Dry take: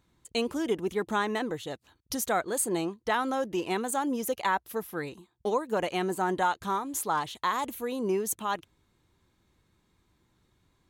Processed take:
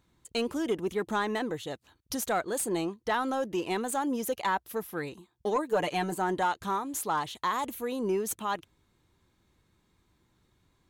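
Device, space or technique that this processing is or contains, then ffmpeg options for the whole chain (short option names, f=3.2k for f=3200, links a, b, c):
saturation between pre-emphasis and de-emphasis: -filter_complex "[0:a]highshelf=f=6.1k:g=11.5,asoftclip=type=tanh:threshold=-18dB,highshelf=f=6.1k:g=-11.5,asettb=1/sr,asplit=3[a][b][c];[a]atrim=end=5.554[d];[b]atrim=start=5.55:end=6.14,asetpts=PTS-STARTPTS,afade=t=in:d=0.004:c=qsin,afade=t=out:st=0.586:d=0.004:c=qsin,aecho=1:1:6.7:0.69,atrim=end_sample=26019[e];[c]atrim=start=6.136[f];[d][e]acrossfade=d=0.004:c1=hsin:c2=qsin[g];[g][f]acrossfade=d=0.004:c1=qsin:c2=hsin"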